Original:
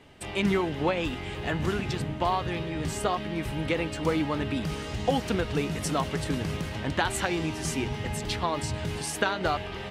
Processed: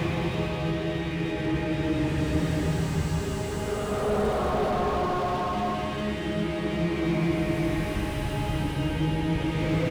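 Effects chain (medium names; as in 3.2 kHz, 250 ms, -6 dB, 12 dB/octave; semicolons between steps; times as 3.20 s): echo from a far wall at 46 m, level -20 dB; Paulstretch 9×, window 0.25 s, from 2.57 s; slew-rate limiter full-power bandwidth 25 Hz; trim +4.5 dB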